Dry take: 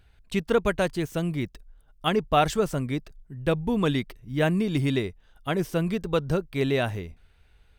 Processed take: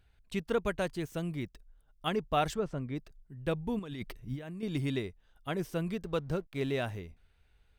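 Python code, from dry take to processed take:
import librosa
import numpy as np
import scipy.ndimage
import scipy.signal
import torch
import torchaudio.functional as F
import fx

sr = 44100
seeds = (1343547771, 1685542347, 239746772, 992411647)

y = fx.spacing_loss(x, sr, db_at_10k=20, at=(2.53, 2.95), fade=0.02)
y = fx.over_compress(y, sr, threshold_db=-32.0, ratio=-1.0, at=(3.79, 4.63))
y = fx.backlash(y, sr, play_db=-41.0, at=(6.05, 6.86))
y = F.gain(torch.from_numpy(y), -8.0).numpy()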